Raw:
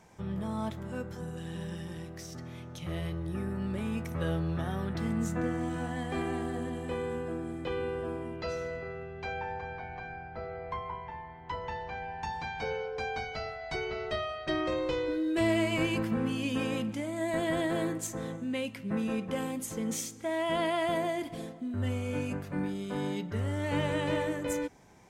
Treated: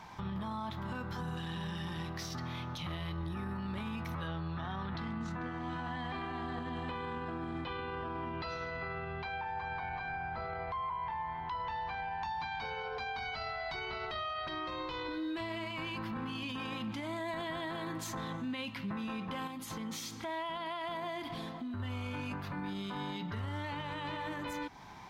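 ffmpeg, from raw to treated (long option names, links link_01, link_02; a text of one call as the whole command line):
ffmpeg -i in.wav -filter_complex "[0:a]asettb=1/sr,asplit=3[link_01][link_02][link_03];[link_01]atrim=end=4.274[link_04];[link_02]atrim=start=4.27:end=9.47,asetpts=PTS-STARTPTS,afade=type=in:duration=0.004:curve=qsin,afade=type=out:start_time=5.196:duration=0.004:curve=qsin,lowpass=5500[link_05];[link_03]atrim=start=9.466[link_06];[link_04][link_05]acrossfade=duration=0.004:curve1=hsin:curve2=qsin[link_07];[link_07][link_06]acrossfade=duration=0.004:curve1=qsin:curve2=hsin,asettb=1/sr,asplit=3[link_08][link_09][link_10];[link_08]atrim=end=19.474[link_11];[link_09]atrim=start=19.47:end=21.8,asetpts=PTS-STARTPTS,afade=type=in:duration=0.004:curve=qsin,afade=type=out:start_time=2.326:duration=0.004:curve=qsin,acompressor=threshold=-42dB:ratio=4:attack=3.2:release=140:knee=1:detection=peak[link_12];[link_10]atrim=start=21.796[link_13];[link_11][link_12]acrossfade=duration=0.004:curve1=hsin:curve2=qsin[link_14];[link_14][link_13]acrossfade=duration=0.004:curve1=qsin:curve2=hsin,equalizer=frequency=500:width_type=o:width=1:gain=-9,equalizer=frequency=1000:width_type=o:width=1:gain=11,equalizer=frequency=4000:width_type=o:width=1:gain=10,equalizer=frequency=8000:width_type=o:width=1:gain=-11,acompressor=threshold=-40dB:ratio=2.5,alimiter=level_in=12.5dB:limit=-24dB:level=0:latency=1:release=14,volume=-12.5dB,volume=5dB" out.wav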